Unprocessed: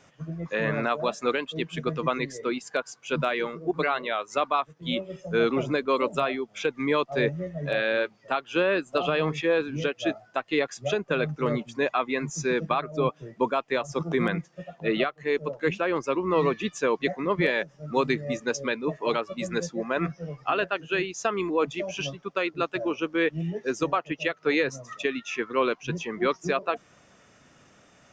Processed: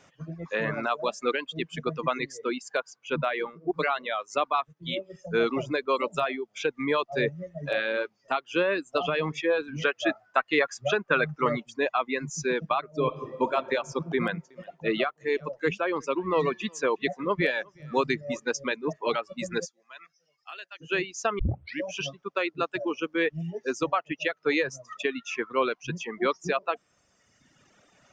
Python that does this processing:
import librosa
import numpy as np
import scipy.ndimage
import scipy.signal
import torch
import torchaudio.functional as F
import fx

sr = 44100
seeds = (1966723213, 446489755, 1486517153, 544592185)

y = fx.high_shelf(x, sr, hz=5700.0, db=-9.5, at=(2.86, 3.71))
y = fx.notch_comb(y, sr, f0_hz=240.0, at=(4.73, 5.15))
y = fx.peak_eq(y, sr, hz=1400.0, db=8.5, octaves=1.4, at=(9.68, 11.6))
y = fx.reverb_throw(y, sr, start_s=12.97, length_s=0.58, rt60_s=2.1, drr_db=2.5)
y = fx.echo_single(y, sr, ms=362, db=-18.0, at=(14.14, 18.93))
y = fx.bandpass_q(y, sr, hz=7700.0, q=0.98, at=(19.64, 20.8), fade=0.02)
y = fx.edit(y, sr, fx.tape_start(start_s=21.39, length_s=0.46), tone=tone)
y = fx.dereverb_blind(y, sr, rt60_s=1.5)
y = fx.low_shelf(y, sr, hz=230.0, db=-3.5)